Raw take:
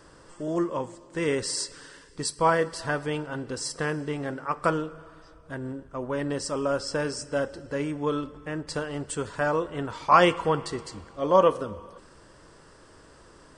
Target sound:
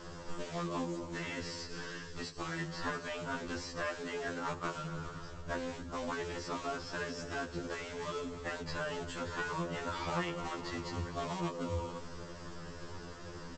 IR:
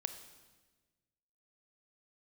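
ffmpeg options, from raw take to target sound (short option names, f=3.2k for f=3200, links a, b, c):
-filter_complex "[0:a]acompressor=threshold=-35dB:ratio=5,aresample=16000,acrusher=bits=3:mode=log:mix=0:aa=0.000001,aresample=44100,equalizer=f=160:t=o:w=0.41:g=5.5,afftfilt=real='re*lt(hypot(re,im),0.0794)':imag='im*lt(hypot(re,im),0.0794)':win_size=1024:overlap=0.75,acrossover=split=3500[a][b];[b]acompressor=threshold=-54dB:ratio=4:attack=1:release=60[c];[a][c]amix=inputs=2:normalize=0,lowshelf=f=100:g=6.5,asplit=5[d][e][f][g][h];[e]adelay=254,afreqshift=-40,volume=-16.5dB[i];[f]adelay=508,afreqshift=-80,volume=-23.6dB[j];[g]adelay=762,afreqshift=-120,volume=-30.8dB[k];[h]adelay=1016,afreqshift=-160,volume=-37.9dB[l];[d][i][j][k][l]amix=inputs=5:normalize=0,afftfilt=real='re*2*eq(mod(b,4),0)':imag='im*2*eq(mod(b,4),0)':win_size=2048:overlap=0.75,volume=6.5dB"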